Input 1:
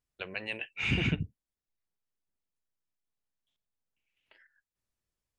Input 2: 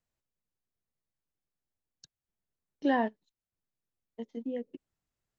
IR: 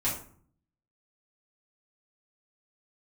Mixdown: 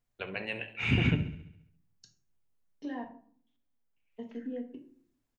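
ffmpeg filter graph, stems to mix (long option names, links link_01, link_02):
-filter_complex "[0:a]equalizer=frequency=7500:width=0.39:gain=-8,volume=1dB,asplit=3[link_01][link_02][link_03];[link_02]volume=-13.5dB[link_04];[link_03]volume=-13dB[link_05];[1:a]acompressor=threshold=-37dB:ratio=6,volume=-5.5dB,asplit=3[link_06][link_07][link_08];[link_06]atrim=end=3.04,asetpts=PTS-STARTPTS,afade=type=out:start_time=3.036:duration=0.004:curve=hsin[link_09];[link_07]atrim=start=3.04:end=4.11,asetpts=PTS-STARTPTS,volume=0[link_10];[link_08]atrim=start=4.11,asetpts=PTS-STARTPTS,afade=type=in:duration=0.004:curve=hsin[link_11];[link_09][link_10][link_11]concat=n=3:v=0:a=1,asplit=2[link_12][link_13];[link_13]volume=-5.5dB[link_14];[2:a]atrim=start_sample=2205[link_15];[link_04][link_14]amix=inputs=2:normalize=0[link_16];[link_16][link_15]afir=irnorm=-1:irlink=0[link_17];[link_05]aecho=0:1:68|136|204|272|340|408|476|544|612:1|0.57|0.325|0.185|0.106|0.0602|0.0343|0.0195|0.0111[link_18];[link_01][link_12][link_17][link_18]amix=inputs=4:normalize=0"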